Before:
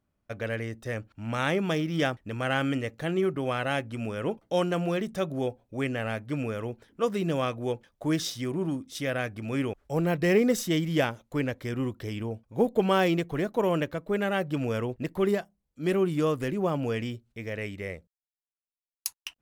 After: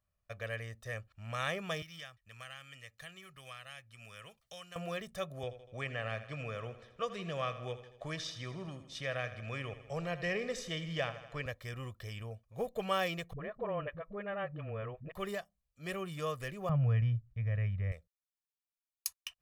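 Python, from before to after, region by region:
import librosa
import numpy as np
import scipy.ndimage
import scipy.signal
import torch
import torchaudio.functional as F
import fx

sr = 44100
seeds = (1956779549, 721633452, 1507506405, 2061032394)

y = fx.chain(x, sr, fx.tone_stack(knobs='5-5-5'),
    fx.band_squash(depth_pct=100), at=(1.82, 4.76))
y = fx.chain(y, sr, fx.lowpass(hz=5200.0, slope=12),
    fx.echo_feedback(ms=80, feedback_pct=54, wet_db=-13.5),
    fx.band_squash(depth_pct=40), at=(5.43, 11.46))
y = fx.chain(y, sr, fx.gaussian_blur(sigma=3.7),
    fx.dispersion(late='highs', ms=57.0, hz=310.0), at=(13.33, 15.12))
y = fx.chain(y, sr, fx.lowpass(hz=1800.0, slope=12),
    fx.low_shelf_res(hz=210.0, db=13.0, q=1.5), at=(16.69, 17.92))
y = fx.peak_eq(y, sr, hz=290.0, db=-11.0, octaves=2.0)
y = y + 0.53 * np.pad(y, (int(1.7 * sr / 1000.0), 0))[:len(y)]
y = y * librosa.db_to_amplitude(-6.0)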